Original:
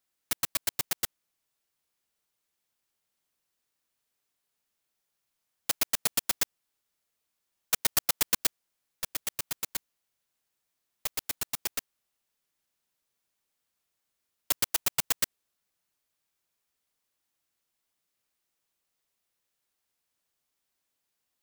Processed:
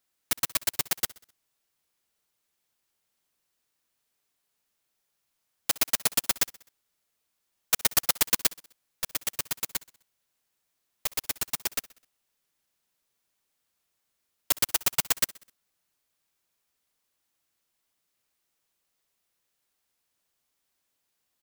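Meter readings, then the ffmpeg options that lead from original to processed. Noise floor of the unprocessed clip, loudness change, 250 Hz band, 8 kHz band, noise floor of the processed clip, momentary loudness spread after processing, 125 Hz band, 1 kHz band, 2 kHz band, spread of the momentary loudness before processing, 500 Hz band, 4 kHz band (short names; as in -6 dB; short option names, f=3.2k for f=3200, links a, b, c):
-82 dBFS, +3.0 dB, +3.0 dB, +3.0 dB, -79 dBFS, 10 LU, +3.0 dB, +3.0 dB, +3.0 dB, 9 LU, +3.0 dB, +3.0 dB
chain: -af "aecho=1:1:64|128|192|256:0.0841|0.0438|0.0228|0.0118,volume=3dB"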